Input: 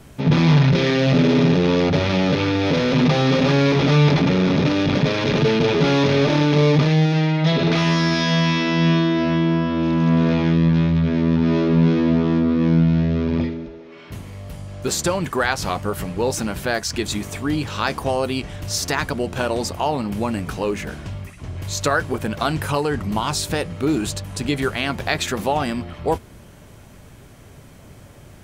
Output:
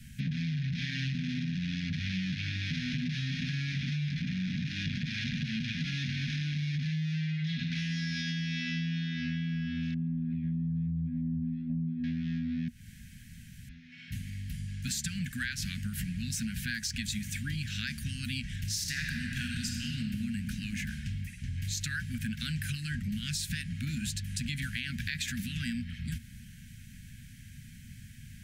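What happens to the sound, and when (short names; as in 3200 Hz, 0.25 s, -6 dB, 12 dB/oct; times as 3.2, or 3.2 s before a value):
9.94–12.04 formant sharpening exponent 2
12.68–13.69 room tone
18.73–20.19 reverb throw, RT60 2.3 s, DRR 0.5 dB
whole clip: Chebyshev band-stop 240–1600 Hz, order 5; limiter -13.5 dBFS; compressor, threshold -28 dBFS; gain -3 dB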